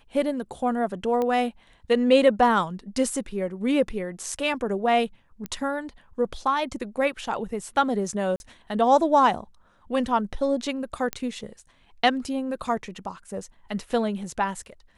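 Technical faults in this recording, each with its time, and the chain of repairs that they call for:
1.22 pop -16 dBFS
5.46 pop -17 dBFS
8.36–8.4 gap 41 ms
11.13 pop -11 dBFS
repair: de-click; interpolate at 8.36, 41 ms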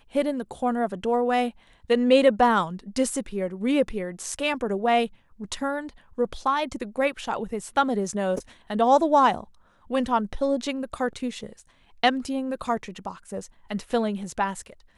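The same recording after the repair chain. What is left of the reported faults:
1.22 pop

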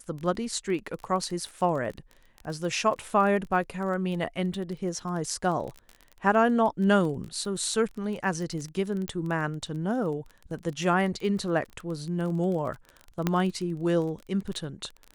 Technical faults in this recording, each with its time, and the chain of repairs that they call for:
crackle 23/s -33 dBFS
9.08 pop -17 dBFS
13.27 pop -11 dBFS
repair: de-click

